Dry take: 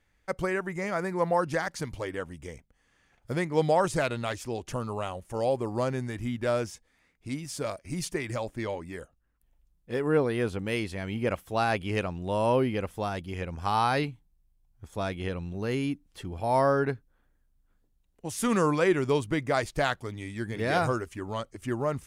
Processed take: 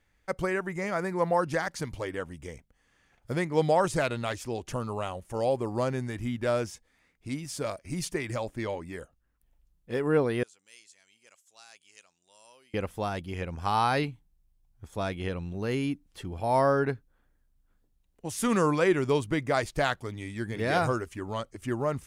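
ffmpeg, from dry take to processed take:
ffmpeg -i in.wav -filter_complex "[0:a]asettb=1/sr,asplit=3[link_01][link_02][link_03];[link_01]atrim=end=10.434[link_04];[link_02]atrim=start=10.43:end=12.74,asetpts=PTS-STARTPTS,afade=type=in:duration=0.004:curve=qsin,afade=type=out:start_time=2.306:duration=0.004:curve=qsin,bandpass=frequency=7100:width_type=q:width=4.1[link_05];[link_03]atrim=start=12.736[link_06];[link_04][link_05]acrossfade=duration=0.004:curve1=hsin:curve2=qsin[link_07];[link_07][link_06]acrossfade=duration=0.004:curve1=qsin:curve2=hsin" out.wav

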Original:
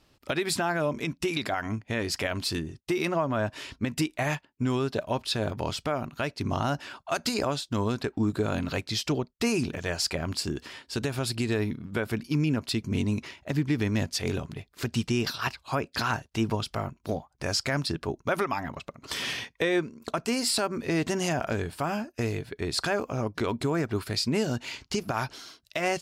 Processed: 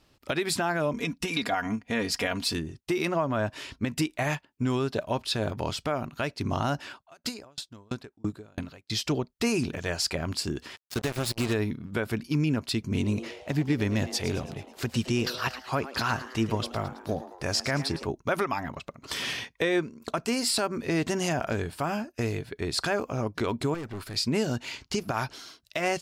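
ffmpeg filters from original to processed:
ffmpeg -i in.wav -filter_complex "[0:a]asettb=1/sr,asplit=3[link_01][link_02][link_03];[link_01]atrim=end=0.934[link_04];[link_02]atrim=start=0.93:end=2.54,asetpts=PTS-STARTPTS,afade=type=in:duration=0.004:curve=qsin,afade=type=out:start_time=1.606:duration=0.004:curve=qsin,aecho=1:1:4.2:0.65,atrim=end_sample=71001[link_05];[link_03]atrim=start=2.536[link_06];[link_04][link_05]acrossfade=duration=0.004:curve1=hsin:curve2=qsin[link_07];[link_07][link_06]acrossfade=duration=0.004:curve1=qsin:curve2=hsin,asettb=1/sr,asplit=3[link_08][link_09][link_10];[link_08]atrim=end=6.914[link_11];[link_09]atrim=start=6.91:end=8.9,asetpts=PTS-STARTPTS,afade=type=in:duration=0.004:curve=qsin,afade=type=out:start_time=1.986:duration=0.004:curve=qsin,aeval=exprs='val(0)*pow(10,-36*if(lt(mod(3*n/s,1),2*abs(3)/1000),1-mod(3*n/s,1)/(2*abs(3)/1000),(mod(3*n/s,1)-2*abs(3)/1000)/(1-2*abs(3)/1000))/20)':channel_layout=same[link_12];[link_10]atrim=start=8.896[link_13];[link_11][link_12]acrossfade=duration=0.004:curve1=hsin:curve2=qsin[link_14];[link_14][link_13]acrossfade=duration=0.004:curve1=qsin:curve2=hsin,asplit=3[link_15][link_16][link_17];[link_15]afade=type=out:start_time=10.75:duration=0.02[link_18];[link_16]acrusher=bits=4:mix=0:aa=0.5,afade=type=in:start_time=10.75:duration=0.02,afade=type=out:start_time=11.52:duration=0.02[link_19];[link_17]afade=type=in:start_time=11.52:duration=0.02[link_20];[link_18][link_19][link_20]amix=inputs=3:normalize=0,asettb=1/sr,asplit=3[link_21][link_22][link_23];[link_21]atrim=end=12.914[link_24];[link_22]atrim=start=12.91:end=18.06,asetpts=PTS-STARTPTS,afade=type=in:duration=0.004:curve=qsin,afade=type=out:start_time=5.146:duration=0.004:curve=qsin,asplit=6[link_25][link_26][link_27][link_28][link_29][link_30];[link_26]adelay=109,afreqshift=130,volume=-14dB[link_31];[link_27]adelay=218,afreqshift=260,volume=-19.5dB[link_32];[link_28]adelay=327,afreqshift=390,volume=-25dB[link_33];[link_29]adelay=436,afreqshift=520,volume=-30.5dB[link_34];[link_30]adelay=545,afreqshift=650,volume=-36.1dB[link_35];[link_25][link_31][link_32][link_33][link_34][link_35]amix=inputs=6:normalize=0,atrim=end_sample=227115[link_36];[link_23]atrim=start=18.056[link_37];[link_24][link_36]acrossfade=duration=0.004:curve1=hsin:curve2=qsin[link_38];[link_38][link_37]acrossfade=duration=0.004:curve1=qsin:curve2=hsin,asettb=1/sr,asplit=3[link_39][link_40][link_41];[link_39]atrim=end=23.744[link_42];[link_40]atrim=start=23.74:end=24.16,asetpts=PTS-STARTPTS,afade=type=in:duration=0.004:curve=qsin,afade=type=out:start_time=0.416:duration=0.004:curve=qsin,aeval=exprs='(tanh(44.7*val(0)+0.4)-tanh(0.4))/44.7':channel_layout=same[link_43];[link_41]atrim=start=24.156[link_44];[link_42][link_43]acrossfade=duration=0.004:curve1=hsin:curve2=qsin[link_45];[link_45][link_44]acrossfade=duration=0.004:curve1=qsin:curve2=hsin" out.wav

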